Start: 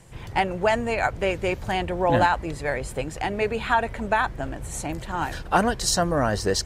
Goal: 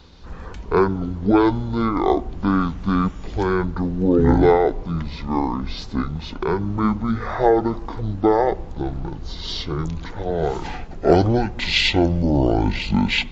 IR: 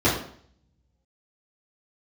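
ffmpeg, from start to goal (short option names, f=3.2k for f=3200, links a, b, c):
-filter_complex "[0:a]asplit=2[a][b];[1:a]atrim=start_sample=2205[c];[b][c]afir=irnorm=-1:irlink=0,volume=-35.5dB[d];[a][d]amix=inputs=2:normalize=0,asetrate=22050,aresample=44100,volume=4dB"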